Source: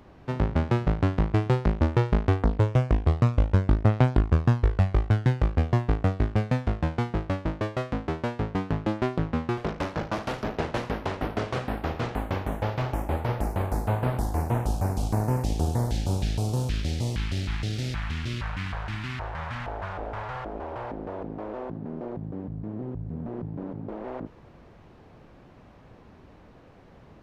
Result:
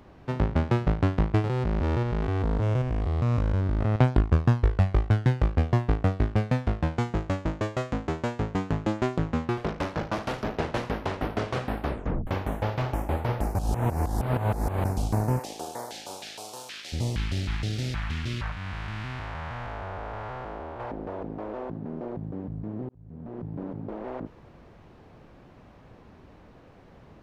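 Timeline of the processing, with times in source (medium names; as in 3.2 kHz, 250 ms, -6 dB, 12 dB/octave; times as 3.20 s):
1.44–3.96 s: spectrogram pixelated in time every 200 ms
6.97–9.45 s: peaking EQ 7 kHz +9 dB 0.43 oct
11.82 s: tape stop 0.45 s
13.55–14.85 s: reverse
15.38–16.92 s: high-pass 450 Hz -> 980 Hz
18.52–20.80 s: spectral blur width 348 ms
22.89–23.57 s: fade in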